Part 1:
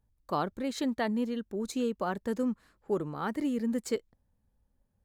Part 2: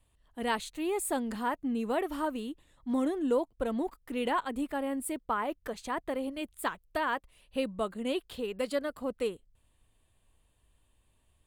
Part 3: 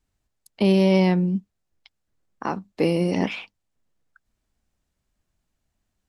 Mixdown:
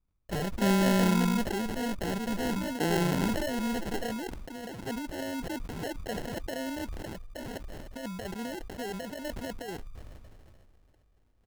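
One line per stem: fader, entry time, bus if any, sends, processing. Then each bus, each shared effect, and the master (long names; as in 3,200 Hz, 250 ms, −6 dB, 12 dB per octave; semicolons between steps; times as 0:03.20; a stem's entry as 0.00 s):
−7.5 dB, 0.00 s, no send, lower of the sound and its delayed copy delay 5.3 ms; high shelf with overshoot 6,000 Hz +10 dB, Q 3; leveller curve on the samples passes 3
−3.0 dB, 0.40 s, no send, compressor whose output falls as the input rises −33 dBFS, ratio −0.5; automatic ducking −14 dB, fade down 1.30 s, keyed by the first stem
−11.5 dB, 0.00 s, no send, spectral tilt −2 dB per octave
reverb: not used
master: Bessel low-pass filter 3,800 Hz, order 8; decimation without filtering 37×; level that may fall only so fast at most 22 dB per second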